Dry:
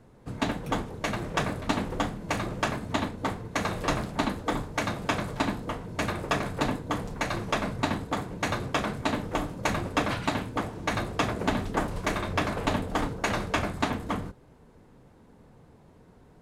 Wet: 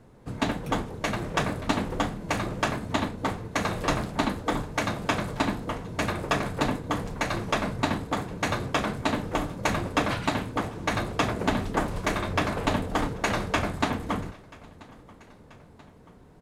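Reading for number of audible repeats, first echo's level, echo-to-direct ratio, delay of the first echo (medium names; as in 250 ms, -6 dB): 2, -23.0 dB, -21.5 dB, 984 ms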